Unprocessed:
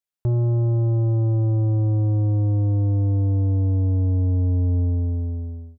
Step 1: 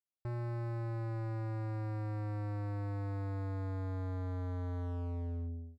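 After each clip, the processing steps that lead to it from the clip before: elliptic low-pass 770 Hz; bell 300 Hz +2.5 dB 0.55 oct; overloaded stage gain 28.5 dB; gain -8.5 dB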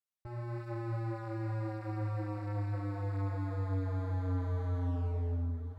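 AGC gain up to 6 dB; diffused feedback echo 0.942 s, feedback 40%, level -15 dB; ensemble effect

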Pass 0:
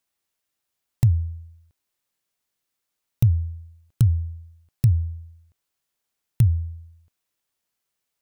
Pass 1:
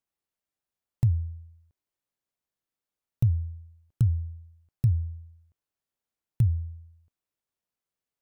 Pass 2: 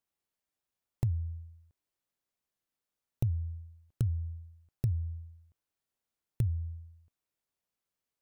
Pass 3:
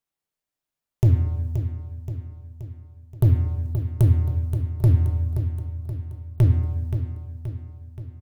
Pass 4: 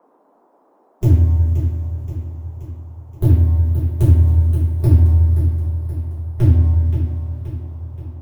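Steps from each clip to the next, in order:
tilt shelf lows +4 dB, about 1400 Hz; gain -9 dB
compressor 2.5:1, threshold -30 dBFS, peak gain reduction 8.5 dB
sample leveller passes 3; on a send: feedback echo 0.526 s, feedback 55%, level -9 dB; on the sum: shoebox room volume 200 m³, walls mixed, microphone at 0.41 m; gain +6 dB
bin magnitudes rounded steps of 15 dB; two-slope reverb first 0.37 s, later 3.9 s, from -18 dB, DRR -8.5 dB; band noise 240–1000 Hz -52 dBFS; gain -4.5 dB

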